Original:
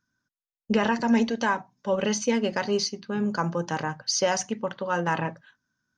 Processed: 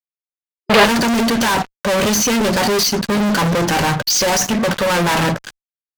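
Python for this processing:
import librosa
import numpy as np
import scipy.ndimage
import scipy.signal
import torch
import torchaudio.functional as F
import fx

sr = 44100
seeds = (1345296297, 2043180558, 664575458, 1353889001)

y = fx.fuzz(x, sr, gain_db=46.0, gate_db=-50.0)
y = fx.cheby_harmonics(y, sr, harmonics=(5,), levels_db=(-20,), full_scale_db=-10.0)
y = fx.spec_box(y, sr, start_s=0.49, length_s=0.36, low_hz=380.0, high_hz=5000.0, gain_db=8)
y = F.gain(torch.from_numpy(y), -1.0).numpy()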